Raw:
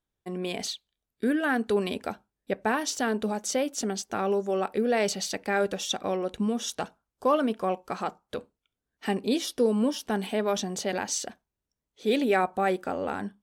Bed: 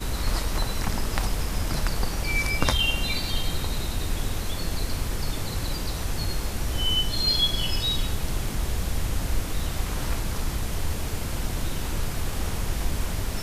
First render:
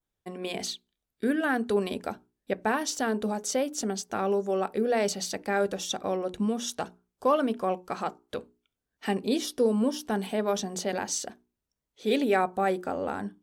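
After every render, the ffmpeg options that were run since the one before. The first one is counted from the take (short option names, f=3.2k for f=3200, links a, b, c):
-af "bandreject=f=60:t=h:w=6,bandreject=f=120:t=h:w=6,bandreject=f=180:t=h:w=6,bandreject=f=240:t=h:w=6,bandreject=f=300:t=h:w=6,bandreject=f=360:t=h:w=6,bandreject=f=420:t=h:w=6,adynamicequalizer=threshold=0.00562:dfrequency=2600:dqfactor=0.99:tfrequency=2600:tqfactor=0.99:attack=5:release=100:ratio=0.375:range=2.5:mode=cutabove:tftype=bell"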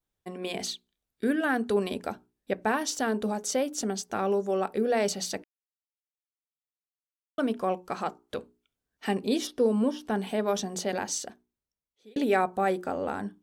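-filter_complex "[0:a]asettb=1/sr,asplit=3[a][b][c];[a]atrim=end=9.474[d];[b]atrim=start=9.47:end=10.27,asetpts=PTS-STARTPTS,afade=t=in:d=0.004:c=qsin,afade=t=out:st=0.796:d=0.004:c=qsin,acrossover=split=3500[e][f];[f]acompressor=threshold=-53dB:ratio=4:attack=1:release=60[g];[e][g]amix=inputs=2:normalize=0[h];[c]atrim=start=10.266[i];[d][h]acrossfade=d=0.004:c1=hsin:c2=qsin[j];[j][i]acrossfade=d=0.004:c1=qsin:c2=hsin,asplit=4[k][l][m][n];[k]atrim=end=5.44,asetpts=PTS-STARTPTS,afade=t=out:st=5.436:d=0.004:c=hsin[o];[l]atrim=start=5.44:end=7.38,asetpts=PTS-STARTPTS,volume=0[p];[m]atrim=start=7.38:end=12.16,asetpts=PTS-STARTPTS,afade=t=in:d=0.004:c=hsin,afade=t=out:st=3.64:d=1.14[q];[n]atrim=start=12.16,asetpts=PTS-STARTPTS,afade=t=in:d=0.004:c=hsin[r];[o][p][q][r]concat=n=4:v=0:a=1"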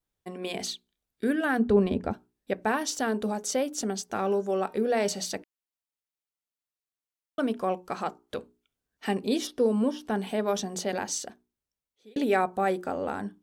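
-filter_complex "[0:a]asplit=3[a][b][c];[a]afade=t=out:st=1.58:d=0.02[d];[b]aemphasis=mode=reproduction:type=riaa,afade=t=in:st=1.58:d=0.02,afade=t=out:st=2.12:d=0.02[e];[c]afade=t=in:st=2.12:d=0.02[f];[d][e][f]amix=inputs=3:normalize=0,asplit=3[g][h][i];[g]afade=t=out:st=4.14:d=0.02[j];[h]bandreject=f=307.7:t=h:w=4,bandreject=f=615.4:t=h:w=4,bandreject=f=923.1:t=h:w=4,bandreject=f=1.2308k:t=h:w=4,bandreject=f=1.5385k:t=h:w=4,bandreject=f=1.8462k:t=h:w=4,bandreject=f=2.1539k:t=h:w=4,bandreject=f=2.4616k:t=h:w=4,bandreject=f=2.7693k:t=h:w=4,bandreject=f=3.077k:t=h:w=4,bandreject=f=3.3847k:t=h:w=4,bandreject=f=3.6924k:t=h:w=4,bandreject=f=4.0001k:t=h:w=4,bandreject=f=4.3078k:t=h:w=4,bandreject=f=4.6155k:t=h:w=4,bandreject=f=4.9232k:t=h:w=4,bandreject=f=5.2309k:t=h:w=4,bandreject=f=5.5386k:t=h:w=4,bandreject=f=5.8463k:t=h:w=4,bandreject=f=6.154k:t=h:w=4,bandreject=f=6.4617k:t=h:w=4,bandreject=f=6.7694k:t=h:w=4,bandreject=f=7.0771k:t=h:w=4,bandreject=f=7.3848k:t=h:w=4,bandreject=f=7.6925k:t=h:w=4,bandreject=f=8.0002k:t=h:w=4,bandreject=f=8.3079k:t=h:w=4,bandreject=f=8.6156k:t=h:w=4,bandreject=f=8.9233k:t=h:w=4,bandreject=f=9.231k:t=h:w=4,bandreject=f=9.5387k:t=h:w=4,bandreject=f=9.8464k:t=h:w=4,bandreject=f=10.1541k:t=h:w=4,afade=t=in:st=4.14:d=0.02,afade=t=out:st=5.24:d=0.02[k];[i]afade=t=in:st=5.24:d=0.02[l];[j][k][l]amix=inputs=3:normalize=0"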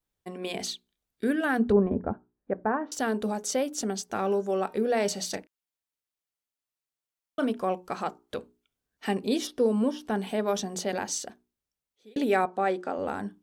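-filter_complex "[0:a]asettb=1/sr,asplit=3[a][b][c];[a]atrim=end=1.724[d];[b]atrim=start=1.72:end=2.92,asetpts=PTS-STARTPTS,afade=t=in:d=0.004:c=qsin,afade=t=out:st=1.196:d=0.004:c=qsin,lowpass=f=1.5k:w=0.5412,lowpass=f=1.5k:w=1.3066[e];[c]atrim=start=2.916[f];[d][e]acrossfade=d=0.004:c1=hsin:c2=qsin[g];[g][f]acrossfade=d=0.004:c1=qsin:c2=hsin,asettb=1/sr,asplit=3[h][i][j];[h]atrim=end=5.304[k];[i]atrim=start=5.3:end=7.5,asetpts=PTS-STARTPTS,afade=t=in:d=0.004:c=qsin,afade=t=out:st=2.196:d=0.004:c=qsin,asplit=2[l][m];[m]adelay=32,volume=-10dB[n];[l][n]amix=inputs=2:normalize=0,atrim=end_sample=97020[o];[j]atrim=start=7.496[p];[k][o]acrossfade=d=0.004:c1=hsin:c2=qsin[q];[q][p]acrossfade=d=0.004:c1=qsin:c2=hsin,asettb=1/sr,asplit=3[r][s][t];[r]atrim=end=12.454[u];[s]atrim=start=12.45:end=12.99,asetpts=PTS-STARTPTS,afade=t=in:d=0.004:c=qsin,afade=t=out:st=0.536:d=0.004:c=qsin,highpass=220,lowpass=6.1k[v];[t]atrim=start=12.986[w];[u][v]acrossfade=d=0.004:c1=hsin:c2=qsin[x];[x][w]acrossfade=d=0.004:c1=qsin:c2=hsin"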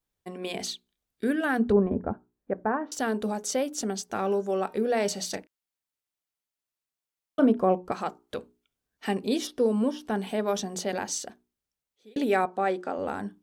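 -filter_complex "[0:a]asettb=1/sr,asplit=3[a][b][c];[a]atrim=end=7.394[d];[b]atrim=start=7.39:end=7.92,asetpts=PTS-STARTPTS,afade=t=in:d=0.004:c=qsin,afade=t=out:st=0.526:d=0.004:c=qsin,tiltshelf=f=1.4k:g=8[e];[c]atrim=start=7.916[f];[d][e]acrossfade=d=0.004:c1=hsin:c2=qsin[g];[g][f]acrossfade=d=0.004:c1=qsin:c2=hsin"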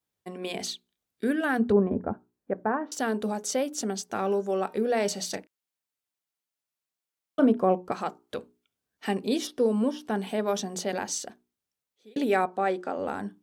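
-af "highpass=86"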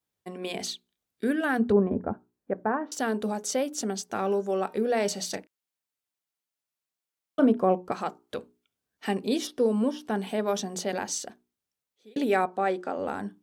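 -af anull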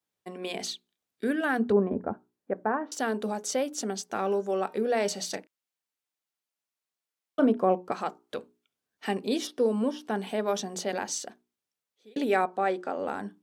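-af "highpass=f=200:p=1,highshelf=f=9k:g=-4"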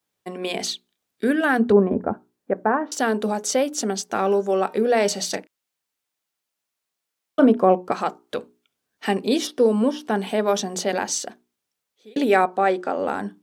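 -af "volume=7.5dB"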